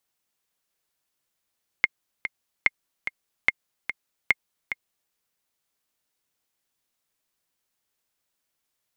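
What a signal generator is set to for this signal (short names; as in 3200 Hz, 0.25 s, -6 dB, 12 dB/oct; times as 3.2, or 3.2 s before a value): metronome 146 bpm, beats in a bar 2, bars 4, 2130 Hz, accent 10 dB -4.5 dBFS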